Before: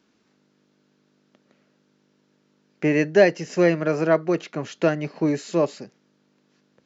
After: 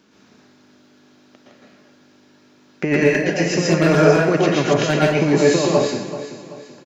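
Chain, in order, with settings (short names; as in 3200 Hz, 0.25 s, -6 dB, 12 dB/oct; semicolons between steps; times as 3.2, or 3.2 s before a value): dynamic EQ 410 Hz, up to -3 dB, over -24 dBFS, Q 1.1; negative-ratio compressor -23 dBFS, ratio -0.5; wavefolder -13.5 dBFS; on a send: feedback echo 0.383 s, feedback 41%, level -13 dB; on the sum: plate-style reverb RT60 0.55 s, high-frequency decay 0.9×, pre-delay 0.105 s, DRR -4.5 dB; gain +5.5 dB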